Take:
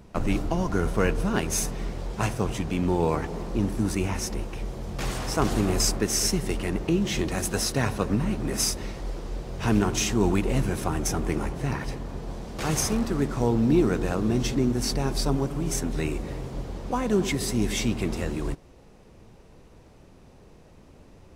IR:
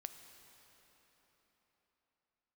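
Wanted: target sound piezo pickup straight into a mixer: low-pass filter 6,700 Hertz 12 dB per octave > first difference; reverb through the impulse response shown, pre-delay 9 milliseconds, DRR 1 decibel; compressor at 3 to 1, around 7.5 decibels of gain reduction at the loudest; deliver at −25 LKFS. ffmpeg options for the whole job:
-filter_complex "[0:a]acompressor=threshold=-27dB:ratio=3,asplit=2[link_01][link_02];[1:a]atrim=start_sample=2205,adelay=9[link_03];[link_02][link_03]afir=irnorm=-1:irlink=0,volume=3dB[link_04];[link_01][link_04]amix=inputs=2:normalize=0,lowpass=6700,aderivative,volume=14.5dB"

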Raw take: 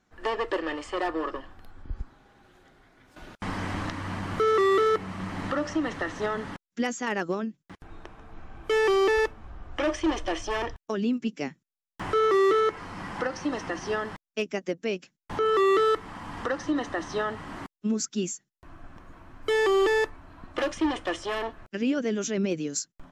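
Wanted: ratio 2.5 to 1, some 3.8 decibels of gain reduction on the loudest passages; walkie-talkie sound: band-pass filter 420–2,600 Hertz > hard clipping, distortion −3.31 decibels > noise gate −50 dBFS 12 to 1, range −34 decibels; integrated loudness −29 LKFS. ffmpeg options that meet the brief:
ffmpeg -i in.wav -af "acompressor=threshold=-26dB:ratio=2.5,highpass=420,lowpass=2600,asoftclip=type=hard:threshold=-38dB,agate=range=-34dB:threshold=-50dB:ratio=12,volume=12.5dB" out.wav

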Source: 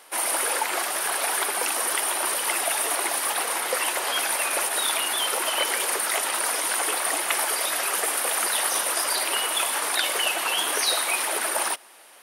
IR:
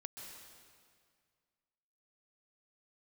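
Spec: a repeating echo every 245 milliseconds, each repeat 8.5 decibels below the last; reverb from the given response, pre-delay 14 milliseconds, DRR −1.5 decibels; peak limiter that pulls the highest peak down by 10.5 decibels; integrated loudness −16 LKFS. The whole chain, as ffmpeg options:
-filter_complex "[0:a]alimiter=limit=-17dB:level=0:latency=1,aecho=1:1:245|490|735|980:0.376|0.143|0.0543|0.0206,asplit=2[link_01][link_02];[1:a]atrim=start_sample=2205,adelay=14[link_03];[link_02][link_03]afir=irnorm=-1:irlink=0,volume=5dB[link_04];[link_01][link_04]amix=inputs=2:normalize=0,volume=5dB"

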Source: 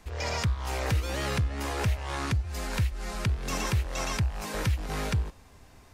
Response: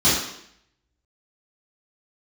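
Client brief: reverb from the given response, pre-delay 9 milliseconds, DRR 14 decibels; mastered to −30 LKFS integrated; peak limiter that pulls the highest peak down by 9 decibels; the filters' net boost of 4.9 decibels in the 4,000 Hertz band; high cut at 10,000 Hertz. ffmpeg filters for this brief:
-filter_complex "[0:a]lowpass=10000,equalizer=frequency=4000:width_type=o:gain=6.5,alimiter=limit=-23dB:level=0:latency=1,asplit=2[link_01][link_02];[1:a]atrim=start_sample=2205,adelay=9[link_03];[link_02][link_03]afir=irnorm=-1:irlink=0,volume=-33dB[link_04];[link_01][link_04]amix=inputs=2:normalize=0,volume=3dB"

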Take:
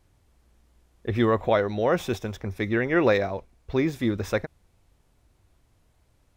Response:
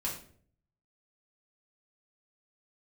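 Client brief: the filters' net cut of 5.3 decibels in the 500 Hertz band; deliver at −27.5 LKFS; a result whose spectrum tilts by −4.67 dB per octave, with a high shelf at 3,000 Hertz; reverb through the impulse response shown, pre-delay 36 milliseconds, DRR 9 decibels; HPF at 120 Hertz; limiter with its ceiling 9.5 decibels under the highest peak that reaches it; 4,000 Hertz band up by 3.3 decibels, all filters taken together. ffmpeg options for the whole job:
-filter_complex "[0:a]highpass=120,equalizer=frequency=500:width_type=o:gain=-6.5,highshelf=frequency=3000:gain=-6,equalizer=frequency=4000:width_type=o:gain=8,alimiter=limit=-21dB:level=0:latency=1,asplit=2[link_01][link_02];[1:a]atrim=start_sample=2205,adelay=36[link_03];[link_02][link_03]afir=irnorm=-1:irlink=0,volume=-12dB[link_04];[link_01][link_04]amix=inputs=2:normalize=0,volume=5dB"

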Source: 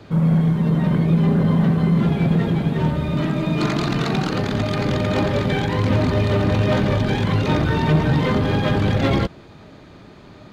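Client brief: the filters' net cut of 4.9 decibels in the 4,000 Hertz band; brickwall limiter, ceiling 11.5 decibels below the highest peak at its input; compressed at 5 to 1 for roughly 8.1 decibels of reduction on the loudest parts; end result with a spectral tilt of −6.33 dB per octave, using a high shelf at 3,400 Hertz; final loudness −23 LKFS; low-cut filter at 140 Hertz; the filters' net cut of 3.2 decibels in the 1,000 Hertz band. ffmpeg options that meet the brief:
ffmpeg -i in.wav -af "highpass=140,equalizer=frequency=1000:width_type=o:gain=-4,highshelf=frequency=3400:gain=4.5,equalizer=frequency=4000:width_type=o:gain=-9,acompressor=threshold=-24dB:ratio=5,volume=11.5dB,alimiter=limit=-15dB:level=0:latency=1" out.wav

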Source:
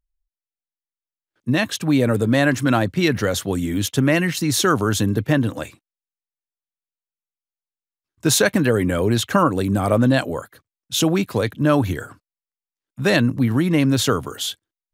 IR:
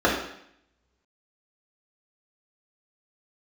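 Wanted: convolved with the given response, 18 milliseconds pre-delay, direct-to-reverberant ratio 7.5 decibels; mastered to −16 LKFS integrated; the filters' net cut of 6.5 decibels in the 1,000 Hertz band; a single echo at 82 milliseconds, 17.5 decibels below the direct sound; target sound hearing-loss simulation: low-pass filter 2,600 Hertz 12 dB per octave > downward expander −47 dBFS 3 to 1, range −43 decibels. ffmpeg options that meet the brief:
-filter_complex "[0:a]equalizer=frequency=1000:width_type=o:gain=-9,aecho=1:1:82:0.133,asplit=2[link_01][link_02];[1:a]atrim=start_sample=2205,adelay=18[link_03];[link_02][link_03]afir=irnorm=-1:irlink=0,volume=-27dB[link_04];[link_01][link_04]amix=inputs=2:normalize=0,lowpass=2600,agate=range=-43dB:threshold=-47dB:ratio=3,volume=3.5dB"

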